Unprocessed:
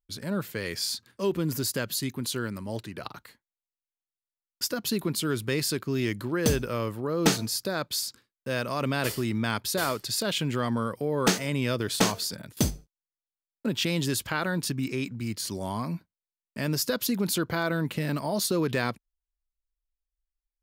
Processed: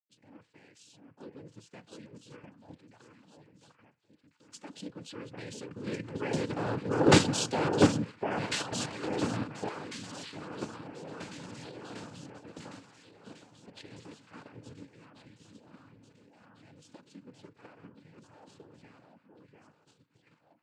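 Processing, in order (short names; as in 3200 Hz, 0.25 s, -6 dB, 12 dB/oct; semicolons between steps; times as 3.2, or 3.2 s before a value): Doppler pass-by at 7.26, 7 m/s, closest 1.8 m; LPF 4800 Hz 12 dB/oct; echo with dull and thin repeats by turns 0.699 s, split 1600 Hz, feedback 62%, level -3 dB; noise vocoder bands 8; in parallel at +3 dB: level quantiser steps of 14 dB; on the sum: FDN reverb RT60 0.32 s, low-frequency decay 0.7×, high-frequency decay 0.6×, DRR 14.5 dB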